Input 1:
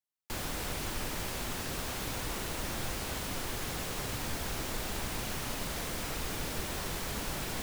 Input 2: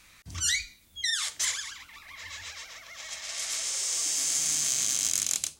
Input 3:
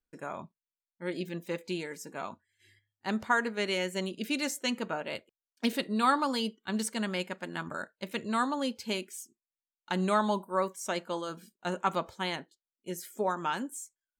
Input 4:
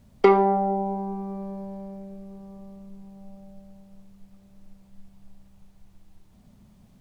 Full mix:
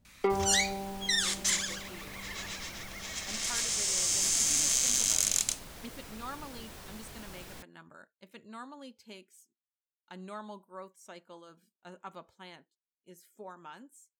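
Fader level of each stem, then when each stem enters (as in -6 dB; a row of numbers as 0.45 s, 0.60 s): -11.0 dB, 0.0 dB, -16.0 dB, -12.0 dB; 0.00 s, 0.05 s, 0.20 s, 0.00 s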